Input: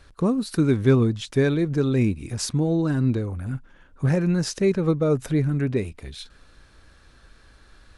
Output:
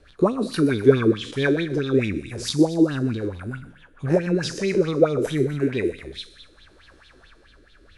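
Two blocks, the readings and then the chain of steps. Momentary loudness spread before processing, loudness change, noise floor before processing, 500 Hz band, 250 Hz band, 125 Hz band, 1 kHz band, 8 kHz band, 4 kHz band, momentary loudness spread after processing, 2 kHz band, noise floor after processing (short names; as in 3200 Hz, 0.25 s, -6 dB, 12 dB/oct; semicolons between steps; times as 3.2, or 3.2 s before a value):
11 LU, +1.0 dB, -54 dBFS, +3.5 dB, +0.5 dB, -4.5 dB, +4.0 dB, -2.5 dB, +3.5 dB, 16 LU, +4.5 dB, -54 dBFS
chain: spectral trails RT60 0.58 s; rotary speaker horn 6.7 Hz, later 0.7 Hz, at 4.81; on a send: thin delay 0.125 s, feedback 54%, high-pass 1600 Hz, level -10.5 dB; on the sum: LFO bell 4.6 Hz 320–3700 Hz +18 dB; gain -4 dB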